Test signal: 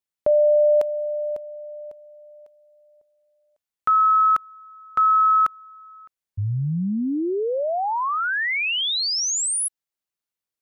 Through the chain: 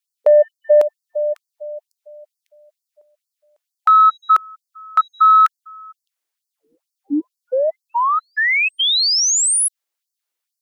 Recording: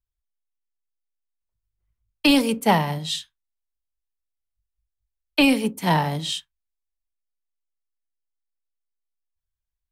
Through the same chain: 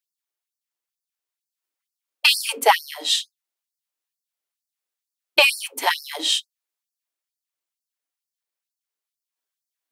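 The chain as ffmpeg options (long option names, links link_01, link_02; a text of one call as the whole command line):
ffmpeg -i in.wav -af "acontrast=38,afftfilt=real='re*gte(b*sr/1024,230*pow(4400/230,0.5+0.5*sin(2*PI*2.2*pts/sr)))':imag='im*gte(b*sr/1024,230*pow(4400/230,0.5+0.5*sin(2*PI*2.2*pts/sr)))':win_size=1024:overlap=0.75,volume=2dB" out.wav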